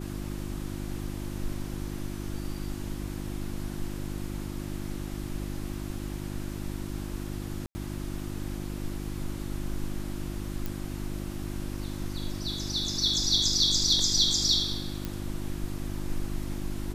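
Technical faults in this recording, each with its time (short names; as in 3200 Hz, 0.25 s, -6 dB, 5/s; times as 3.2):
hum 50 Hz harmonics 7 -36 dBFS
7.66–7.75 gap 90 ms
10.66 pop
15.05 pop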